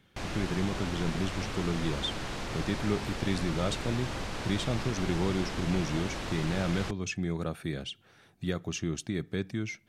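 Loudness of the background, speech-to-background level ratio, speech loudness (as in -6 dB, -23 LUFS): -36.5 LUFS, 3.0 dB, -33.5 LUFS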